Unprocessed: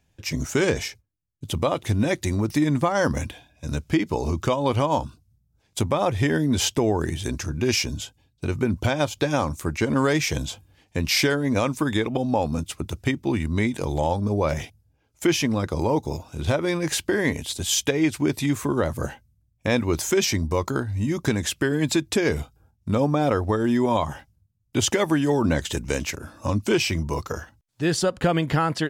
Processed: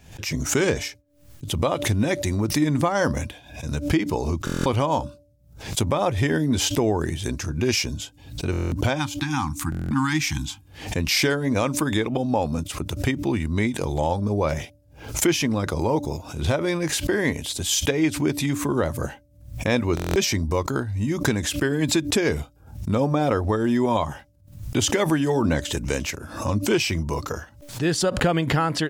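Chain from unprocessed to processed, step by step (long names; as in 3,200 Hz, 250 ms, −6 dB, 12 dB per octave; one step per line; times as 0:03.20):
time-frequency box erased 0:08.97–0:10.61, 340–750 Hz
hum removal 290.6 Hz, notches 2
buffer that repeats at 0:04.45/0:08.51/0:09.70/0:19.95, samples 1,024, times 8
background raised ahead of every attack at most 100 dB per second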